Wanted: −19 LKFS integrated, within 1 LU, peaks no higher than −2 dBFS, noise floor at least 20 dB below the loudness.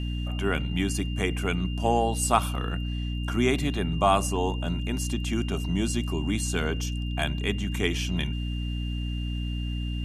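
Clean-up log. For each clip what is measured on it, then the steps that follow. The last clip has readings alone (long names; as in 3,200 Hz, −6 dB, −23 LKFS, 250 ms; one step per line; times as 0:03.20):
mains hum 60 Hz; hum harmonics up to 300 Hz; level of the hum −27 dBFS; interfering tone 2,800 Hz; level of the tone −41 dBFS; integrated loudness −28.0 LKFS; sample peak −6.0 dBFS; target loudness −19.0 LKFS
→ hum removal 60 Hz, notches 5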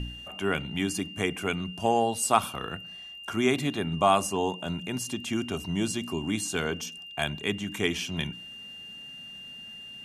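mains hum none found; interfering tone 2,800 Hz; level of the tone −41 dBFS
→ notch filter 2,800 Hz, Q 30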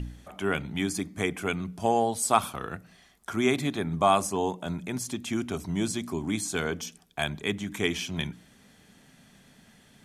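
interfering tone none found; integrated loudness −29.0 LKFS; sample peak −7.5 dBFS; target loudness −19.0 LKFS
→ level +10 dB
brickwall limiter −2 dBFS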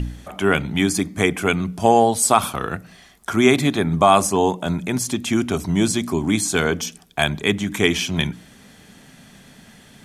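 integrated loudness −19.5 LKFS; sample peak −2.0 dBFS; background noise floor −49 dBFS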